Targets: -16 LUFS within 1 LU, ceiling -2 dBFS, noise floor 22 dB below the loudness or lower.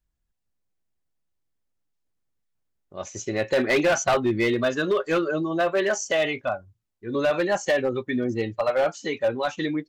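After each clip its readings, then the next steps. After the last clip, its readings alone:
clipped samples 1.3%; clipping level -16.0 dBFS; loudness -24.5 LUFS; peak level -16.0 dBFS; loudness target -16.0 LUFS
-> clip repair -16 dBFS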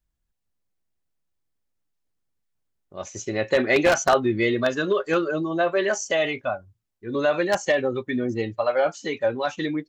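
clipped samples 0.0%; loudness -23.5 LUFS; peak level -7.0 dBFS; loudness target -16.0 LUFS
-> trim +7.5 dB; peak limiter -2 dBFS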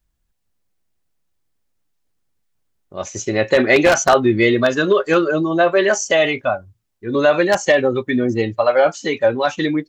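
loudness -16.5 LUFS; peak level -2.0 dBFS; noise floor -70 dBFS

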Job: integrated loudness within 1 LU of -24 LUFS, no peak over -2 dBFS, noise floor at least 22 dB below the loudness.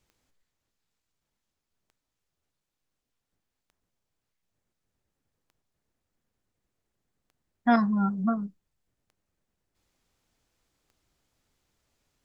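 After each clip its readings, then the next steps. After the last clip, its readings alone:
clicks found 7; loudness -26.5 LUFS; peak level -11.5 dBFS; loudness target -24.0 LUFS
-> de-click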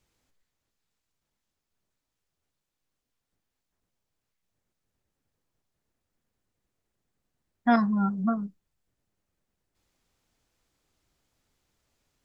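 clicks found 0; loudness -26.5 LUFS; peak level -11.5 dBFS; loudness target -24.0 LUFS
-> trim +2.5 dB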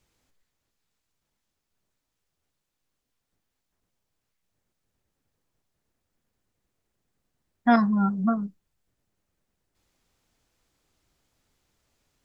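loudness -24.0 LUFS; peak level -9.0 dBFS; noise floor -82 dBFS

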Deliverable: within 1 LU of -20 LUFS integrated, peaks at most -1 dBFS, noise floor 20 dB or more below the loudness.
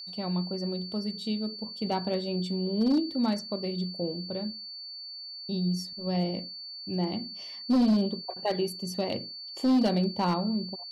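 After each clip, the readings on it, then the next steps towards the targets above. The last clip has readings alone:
clipped samples 0.9%; clipping level -19.0 dBFS; steady tone 4.5 kHz; tone level -39 dBFS; loudness -30.0 LUFS; peak level -19.0 dBFS; loudness target -20.0 LUFS
-> clip repair -19 dBFS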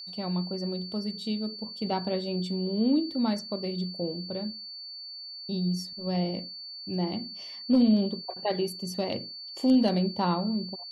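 clipped samples 0.0%; steady tone 4.5 kHz; tone level -39 dBFS
-> band-stop 4.5 kHz, Q 30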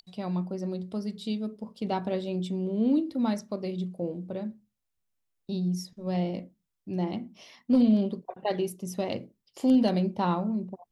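steady tone not found; loudness -29.5 LUFS; peak level -13.0 dBFS; loudness target -20.0 LUFS
-> trim +9.5 dB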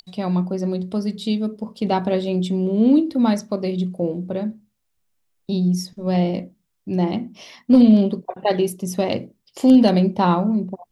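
loudness -20.0 LUFS; peak level -3.5 dBFS; noise floor -72 dBFS

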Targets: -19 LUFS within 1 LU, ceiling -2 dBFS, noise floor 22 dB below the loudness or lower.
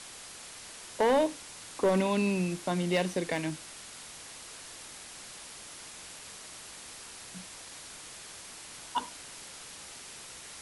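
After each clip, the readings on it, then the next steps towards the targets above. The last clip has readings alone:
clipped samples 0.5%; clipping level -19.5 dBFS; noise floor -47 dBFS; noise floor target -57 dBFS; loudness -34.5 LUFS; peak level -19.5 dBFS; loudness target -19.0 LUFS
-> clip repair -19.5 dBFS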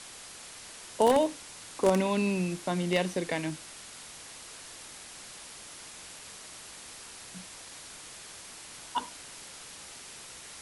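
clipped samples 0.0%; noise floor -47 dBFS; noise floor target -54 dBFS
-> noise reduction 7 dB, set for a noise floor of -47 dBFS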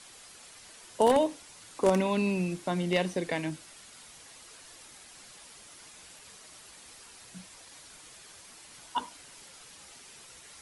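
noise floor -52 dBFS; loudness -29.0 LUFS; peak level -10.5 dBFS; loudness target -19.0 LUFS
-> trim +10 dB; peak limiter -2 dBFS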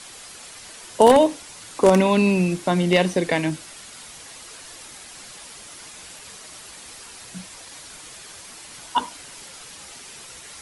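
loudness -19.0 LUFS; peak level -2.0 dBFS; noise floor -42 dBFS

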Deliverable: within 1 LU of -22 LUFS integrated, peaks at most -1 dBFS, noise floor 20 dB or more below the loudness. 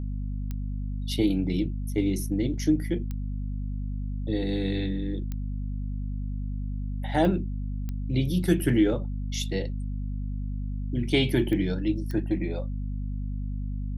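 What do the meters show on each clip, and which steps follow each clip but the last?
clicks found 7; hum 50 Hz; highest harmonic 250 Hz; hum level -28 dBFS; loudness -29.0 LUFS; peak level -9.5 dBFS; loudness target -22.0 LUFS
-> de-click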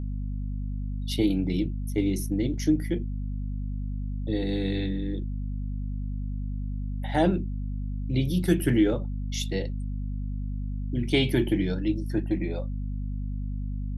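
clicks found 0; hum 50 Hz; highest harmonic 250 Hz; hum level -28 dBFS
-> hum notches 50/100/150/200/250 Hz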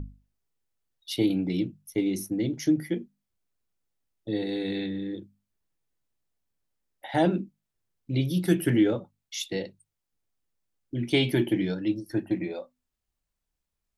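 hum not found; loudness -28.0 LUFS; peak level -10.5 dBFS; loudness target -22.0 LUFS
-> trim +6 dB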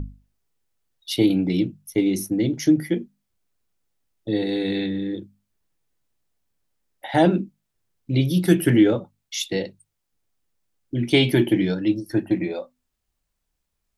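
loudness -22.0 LUFS; peak level -4.5 dBFS; noise floor -78 dBFS

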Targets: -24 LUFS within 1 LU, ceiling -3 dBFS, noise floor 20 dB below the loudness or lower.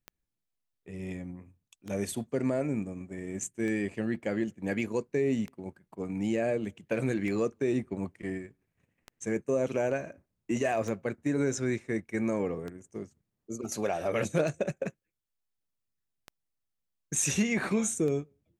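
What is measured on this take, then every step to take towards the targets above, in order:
clicks found 11; loudness -31.5 LUFS; peak level -16.0 dBFS; loudness target -24.0 LUFS
-> de-click; trim +7.5 dB

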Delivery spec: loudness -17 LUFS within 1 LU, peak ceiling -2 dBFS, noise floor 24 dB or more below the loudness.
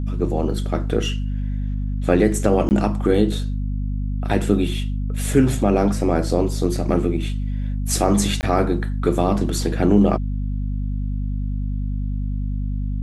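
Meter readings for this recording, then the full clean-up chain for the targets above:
dropouts 2; longest dropout 19 ms; hum 50 Hz; highest harmonic 250 Hz; hum level -21 dBFS; loudness -21.5 LUFS; peak level -3.0 dBFS; loudness target -17.0 LUFS
-> interpolate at 2.69/8.41 s, 19 ms; hum notches 50/100/150/200/250 Hz; trim +4.5 dB; peak limiter -2 dBFS

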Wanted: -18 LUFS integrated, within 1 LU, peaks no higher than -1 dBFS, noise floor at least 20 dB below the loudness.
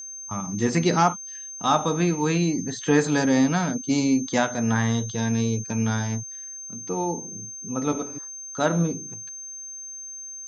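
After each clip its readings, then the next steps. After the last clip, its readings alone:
steady tone 6.3 kHz; tone level -35 dBFS; loudness -25.0 LUFS; peak level -6.0 dBFS; loudness target -18.0 LUFS
-> band-stop 6.3 kHz, Q 30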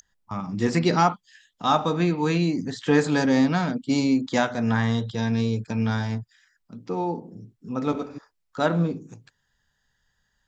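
steady tone not found; loudness -24.0 LUFS; peak level -6.0 dBFS; loudness target -18.0 LUFS
-> trim +6 dB; peak limiter -1 dBFS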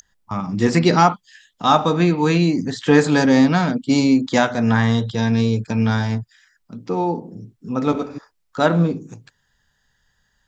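loudness -18.5 LUFS; peak level -1.0 dBFS; noise floor -68 dBFS

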